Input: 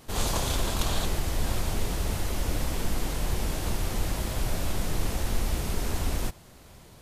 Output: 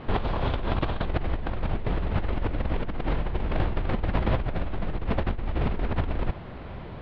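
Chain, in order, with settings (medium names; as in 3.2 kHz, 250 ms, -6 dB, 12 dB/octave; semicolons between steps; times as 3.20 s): Bessel low-pass 2 kHz, order 8; compressor with a negative ratio -33 dBFS, ratio -1; trim +7 dB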